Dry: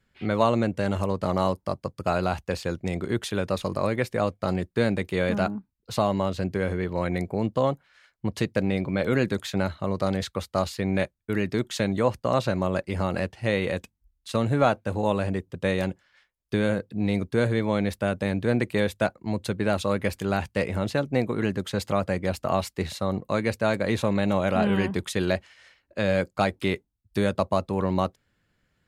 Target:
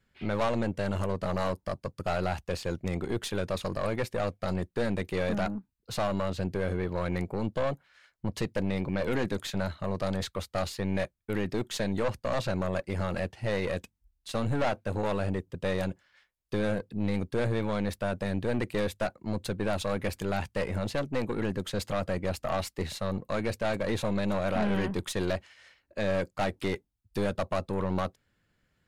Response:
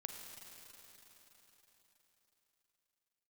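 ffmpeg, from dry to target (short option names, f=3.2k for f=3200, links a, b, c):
-af "aeval=exprs='(tanh(14.1*val(0)+0.5)-tanh(0.5))/14.1':c=same"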